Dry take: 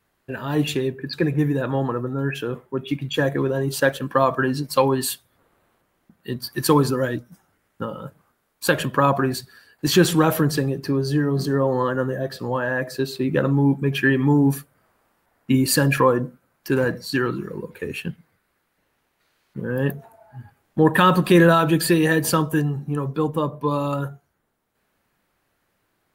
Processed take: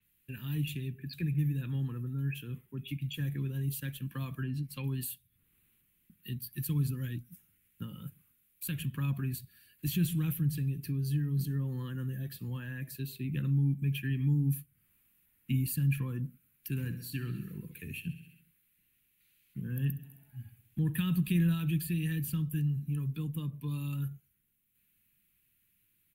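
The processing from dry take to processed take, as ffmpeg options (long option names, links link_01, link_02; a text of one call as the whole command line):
ffmpeg -i in.wav -filter_complex "[0:a]asettb=1/sr,asplit=3[link_01][link_02][link_03];[link_01]atrim=end=4.434[link_04];[link_02]atrim=start=4.43:end=4.84,asetpts=PTS-STARTPTS,afade=type=in:duration=0.004:curve=qsin,afade=type=out:start_time=0.406:duration=0.004:curve=qsin,lowpass=frequency=2200:poles=1[link_05];[link_03]atrim=start=4.836[link_06];[link_04][link_05]acrossfade=duration=0.004:curve1=hsin:curve2=qsin[link_07];[link_07][link_06]acrossfade=duration=0.004:curve1=qsin:curve2=hsin,asplit=3[link_08][link_09][link_10];[link_08]afade=type=out:start_time=16.78:duration=0.02[link_11];[link_09]aecho=1:1:66|132|198|264|330|396:0.188|0.107|0.0612|0.0349|0.0199|0.0113,afade=type=in:start_time=16.78:duration=0.02,afade=type=out:start_time=20.92:duration=0.02[link_12];[link_10]afade=type=in:start_time=20.92:duration=0.02[link_13];[link_11][link_12][link_13]amix=inputs=3:normalize=0,firequalizer=gain_entry='entry(160,0);entry(590,-26);entry(2500,4);entry(5000,-7);entry(12000,13)':delay=0.05:min_phase=1,acrossover=split=200[link_14][link_15];[link_15]acompressor=threshold=-43dB:ratio=2[link_16];[link_14][link_16]amix=inputs=2:normalize=0,adynamicequalizer=threshold=0.00316:dfrequency=5800:dqfactor=0.7:tfrequency=5800:tqfactor=0.7:attack=5:release=100:ratio=0.375:range=2:mode=cutabove:tftype=highshelf,volume=-5dB" out.wav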